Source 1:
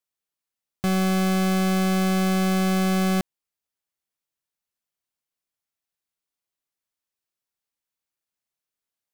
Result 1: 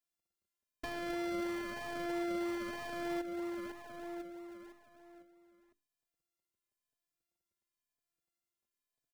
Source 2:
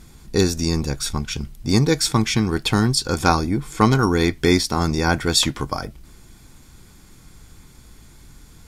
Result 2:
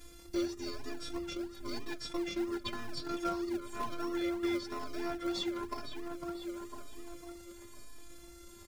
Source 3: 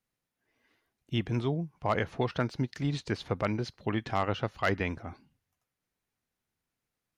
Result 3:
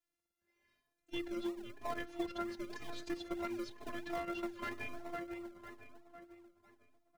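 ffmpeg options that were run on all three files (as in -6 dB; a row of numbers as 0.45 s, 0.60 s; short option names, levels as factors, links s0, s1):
-filter_complex "[0:a]aeval=exprs='if(lt(val(0),0),0.708*val(0),val(0))':c=same,lowshelf=f=150:g=-6.5,bandreject=f=50:t=h:w=6,bandreject=f=100:t=h:w=6,bandreject=f=150:t=h:w=6,bandreject=f=200:t=h:w=6,bandreject=f=250:t=h:w=6,bandreject=f=300:t=h:w=6,bandreject=f=350:t=h:w=6,acrossover=split=4600[s0][s1];[s1]acompressor=threshold=0.00631:ratio=4:attack=1:release=60[s2];[s0][s2]amix=inputs=2:normalize=0,afftfilt=real='hypot(re,im)*cos(PI*b)':imag='0':win_size=512:overlap=0.75,equalizer=f=830:t=o:w=0.29:g=-9.5,asplit=2[s3][s4];[s4]adelay=502,lowpass=f=3000:p=1,volume=0.282,asplit=2[s5][s6];[s6]adelay=502,lowpass=f=3000:p=1,volume=0.49,asplit=2[s7][s8];[s8]adelay=502,lowpass=f=3000:p=1,volume=0.49,asplit=2[s9][s10];[s10]adelay=502,lowpass=f=3000:p=1,volume=0.49,asplit=2[s11][s12];[s12]adelay=502,lowpass=f=3000:p=1,volume=0.49[s13];[s3][s5][s7][s9][s11][s13]amix=inputs=6:normalize=0,asplit=2[s14][s15];[s15]acrusher=samples=39:mix=1:aa=0.000001:lfo=1:lforange=23.4:lforate=3.1,volume=0.355[s16];[s14][s16]amix=inputs=2:normalize=0,aeval=exprs='0.376*(abs(mod(val(0)/0.376+3,4)-2)-1)':c=same,acompressor=threshold=0.0141:ratio=3,asplit=2[s17][s18];[s18]adelay=4.1,afreqshift=0.99[s19];[s17][s19]amix=inputs=2:normalize=1,volume=1.41"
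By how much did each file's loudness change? -17.5 LU, -18.0 LU, -10.5 LU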